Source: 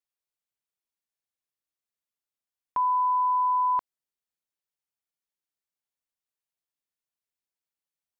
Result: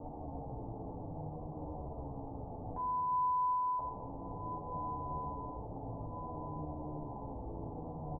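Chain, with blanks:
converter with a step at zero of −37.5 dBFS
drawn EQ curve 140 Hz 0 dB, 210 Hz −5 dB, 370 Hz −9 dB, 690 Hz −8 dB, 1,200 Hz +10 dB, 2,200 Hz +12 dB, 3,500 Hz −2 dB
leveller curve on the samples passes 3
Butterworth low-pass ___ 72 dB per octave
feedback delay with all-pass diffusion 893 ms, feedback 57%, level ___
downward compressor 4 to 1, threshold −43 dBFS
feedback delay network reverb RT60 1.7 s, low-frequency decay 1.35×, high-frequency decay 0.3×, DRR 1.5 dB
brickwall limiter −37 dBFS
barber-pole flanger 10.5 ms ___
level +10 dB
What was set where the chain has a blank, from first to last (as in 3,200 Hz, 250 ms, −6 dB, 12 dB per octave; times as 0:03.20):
810 Hz, −12.5 dB, −0.6 Hz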